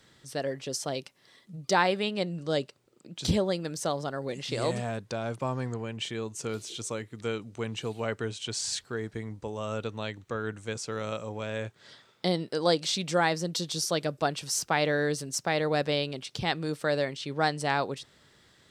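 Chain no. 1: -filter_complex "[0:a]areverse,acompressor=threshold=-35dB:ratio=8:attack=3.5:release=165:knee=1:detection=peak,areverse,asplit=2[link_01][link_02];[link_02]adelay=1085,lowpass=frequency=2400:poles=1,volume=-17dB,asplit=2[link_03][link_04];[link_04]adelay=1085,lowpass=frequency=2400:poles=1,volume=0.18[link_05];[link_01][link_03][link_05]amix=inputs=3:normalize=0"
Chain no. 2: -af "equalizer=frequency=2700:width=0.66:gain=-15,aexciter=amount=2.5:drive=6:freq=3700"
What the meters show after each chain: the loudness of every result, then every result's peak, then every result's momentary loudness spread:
−40.5, −32.0 LKFS; −25.0, −13.0 dBFS; 6, 10 LU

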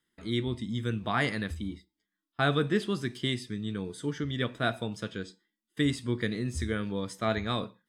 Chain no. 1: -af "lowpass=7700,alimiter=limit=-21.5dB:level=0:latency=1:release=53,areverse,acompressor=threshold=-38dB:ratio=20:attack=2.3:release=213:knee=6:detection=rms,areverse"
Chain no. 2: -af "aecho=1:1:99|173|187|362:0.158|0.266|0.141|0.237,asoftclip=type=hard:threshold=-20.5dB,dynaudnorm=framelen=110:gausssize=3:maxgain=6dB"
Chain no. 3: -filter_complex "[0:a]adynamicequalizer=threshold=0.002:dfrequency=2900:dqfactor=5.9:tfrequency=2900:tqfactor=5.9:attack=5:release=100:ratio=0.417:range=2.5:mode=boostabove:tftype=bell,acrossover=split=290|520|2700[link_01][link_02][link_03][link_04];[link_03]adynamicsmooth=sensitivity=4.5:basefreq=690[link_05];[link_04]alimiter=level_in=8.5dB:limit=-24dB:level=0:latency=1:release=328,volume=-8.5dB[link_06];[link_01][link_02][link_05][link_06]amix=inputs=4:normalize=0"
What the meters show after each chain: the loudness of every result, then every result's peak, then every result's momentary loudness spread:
−46.0, −25.5, −32.5 LKFS; −31.0, −14.5, −14.5 dBFS; 4, 9, 10 LU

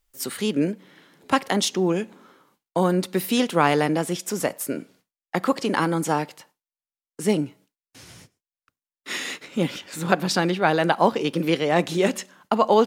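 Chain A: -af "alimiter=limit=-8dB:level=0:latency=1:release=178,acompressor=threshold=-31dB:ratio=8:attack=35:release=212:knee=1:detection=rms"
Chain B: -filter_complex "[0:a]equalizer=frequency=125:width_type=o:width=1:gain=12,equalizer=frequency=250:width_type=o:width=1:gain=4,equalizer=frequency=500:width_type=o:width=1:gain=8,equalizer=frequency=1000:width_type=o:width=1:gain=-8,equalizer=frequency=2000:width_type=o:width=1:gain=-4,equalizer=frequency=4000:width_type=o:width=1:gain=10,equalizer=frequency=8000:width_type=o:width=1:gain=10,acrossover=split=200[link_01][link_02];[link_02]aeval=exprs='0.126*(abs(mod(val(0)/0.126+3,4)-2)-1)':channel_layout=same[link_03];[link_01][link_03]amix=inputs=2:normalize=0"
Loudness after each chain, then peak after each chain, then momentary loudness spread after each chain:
−34.5, −22.0 LKFS; −12.5, −10.0 dBFS; 14, 11 LU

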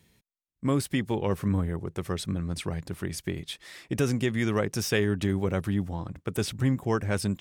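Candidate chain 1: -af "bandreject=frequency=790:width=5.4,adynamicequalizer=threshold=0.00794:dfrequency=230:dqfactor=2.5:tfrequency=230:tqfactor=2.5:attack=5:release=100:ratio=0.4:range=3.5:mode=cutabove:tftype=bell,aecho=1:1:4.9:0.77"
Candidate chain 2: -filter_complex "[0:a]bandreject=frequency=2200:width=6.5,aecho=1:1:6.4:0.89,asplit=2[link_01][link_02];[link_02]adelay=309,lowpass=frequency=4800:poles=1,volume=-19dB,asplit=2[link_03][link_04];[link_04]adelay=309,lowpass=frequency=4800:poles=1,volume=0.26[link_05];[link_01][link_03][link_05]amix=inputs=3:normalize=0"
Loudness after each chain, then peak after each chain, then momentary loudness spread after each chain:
−29.0, −27.0 LKFS; −11.5, −10.5 dBFS; 8, 8 LU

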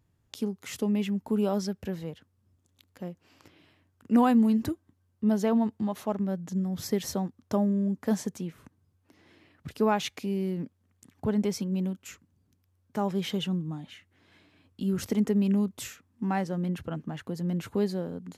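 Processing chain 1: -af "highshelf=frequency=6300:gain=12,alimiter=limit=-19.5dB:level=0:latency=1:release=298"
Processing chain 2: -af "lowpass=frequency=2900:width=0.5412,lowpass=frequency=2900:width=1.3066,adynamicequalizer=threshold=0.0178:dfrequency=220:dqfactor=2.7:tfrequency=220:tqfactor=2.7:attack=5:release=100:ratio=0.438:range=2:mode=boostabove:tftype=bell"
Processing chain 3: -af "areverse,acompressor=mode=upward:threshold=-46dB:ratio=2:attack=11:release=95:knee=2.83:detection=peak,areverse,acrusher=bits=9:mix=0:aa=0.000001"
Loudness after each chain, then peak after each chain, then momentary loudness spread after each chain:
−31.0, −26.5, −29.0 LKFS; −19.5, −10.0, −12.5 dBFS; 13, 15, 16 LU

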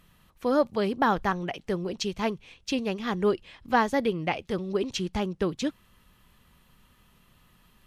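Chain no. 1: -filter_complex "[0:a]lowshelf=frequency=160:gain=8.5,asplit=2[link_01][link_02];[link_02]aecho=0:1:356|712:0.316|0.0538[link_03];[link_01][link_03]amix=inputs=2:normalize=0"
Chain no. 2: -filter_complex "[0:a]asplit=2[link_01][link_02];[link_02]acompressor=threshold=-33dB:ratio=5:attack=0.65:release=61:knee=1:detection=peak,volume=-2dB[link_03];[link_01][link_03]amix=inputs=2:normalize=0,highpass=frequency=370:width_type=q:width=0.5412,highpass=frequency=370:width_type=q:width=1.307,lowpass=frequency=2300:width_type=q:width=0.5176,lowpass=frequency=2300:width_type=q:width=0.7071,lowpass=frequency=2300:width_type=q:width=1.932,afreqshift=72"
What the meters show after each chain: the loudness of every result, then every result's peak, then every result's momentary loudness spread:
−26.5, −29.0 LKFS; −10.5, −9.0 dBFS; 7, 10 LU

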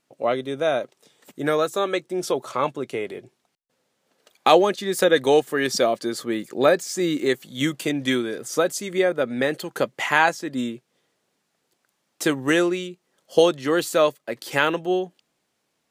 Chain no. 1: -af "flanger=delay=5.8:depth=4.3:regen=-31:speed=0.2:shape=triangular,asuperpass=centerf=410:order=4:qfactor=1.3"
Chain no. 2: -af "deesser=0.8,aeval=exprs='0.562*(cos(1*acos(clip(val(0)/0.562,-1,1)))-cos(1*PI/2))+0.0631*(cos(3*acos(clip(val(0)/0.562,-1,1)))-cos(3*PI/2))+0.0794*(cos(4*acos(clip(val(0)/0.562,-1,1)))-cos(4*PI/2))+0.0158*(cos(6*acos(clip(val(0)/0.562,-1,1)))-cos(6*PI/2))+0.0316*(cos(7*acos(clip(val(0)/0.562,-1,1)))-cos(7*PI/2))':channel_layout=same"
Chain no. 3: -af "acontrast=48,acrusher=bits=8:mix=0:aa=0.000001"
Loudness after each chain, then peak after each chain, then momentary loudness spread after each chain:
−28.5, −28.5, −17.5 LKFS; −9.0, −4.5, −1.5 dBFS; 12, 14, 9 LU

